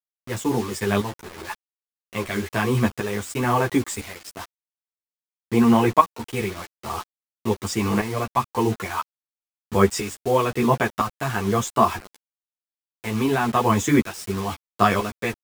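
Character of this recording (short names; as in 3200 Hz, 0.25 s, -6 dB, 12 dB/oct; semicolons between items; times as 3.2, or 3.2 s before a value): tremolo saw up 1 Hz, depth 75%; a quantiser's noise floor 6-bit, dither none; a shimmering, thickened sound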